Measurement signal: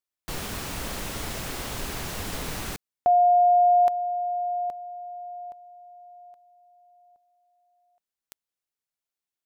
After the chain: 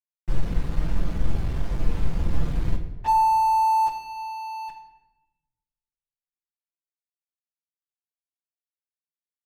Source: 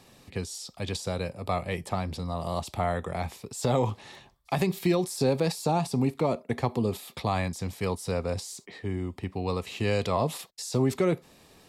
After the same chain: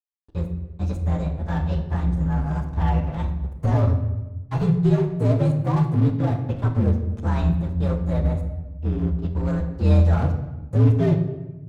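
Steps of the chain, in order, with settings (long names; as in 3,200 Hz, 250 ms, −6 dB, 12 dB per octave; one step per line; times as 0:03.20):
partials spread apart or drawn together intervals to 121%
RIAA equalisation playback
dead-zone distortion −33.5 dBFS
rectangular room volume 540 cubic metres, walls mixed, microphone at 0.79 metres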